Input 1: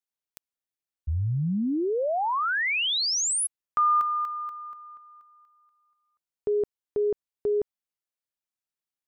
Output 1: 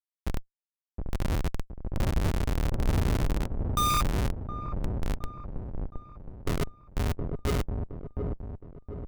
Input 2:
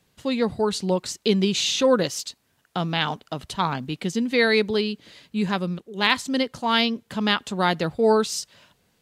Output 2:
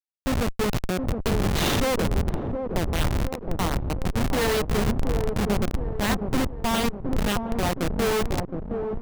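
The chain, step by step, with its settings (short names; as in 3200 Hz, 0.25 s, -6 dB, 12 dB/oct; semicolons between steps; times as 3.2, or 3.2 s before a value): wind noise 96 Hz -28 dBFS; Schmitt trigger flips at -21 dBFS; dark delay 0.717 s, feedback 46%, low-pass 740 Hz, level -4 dB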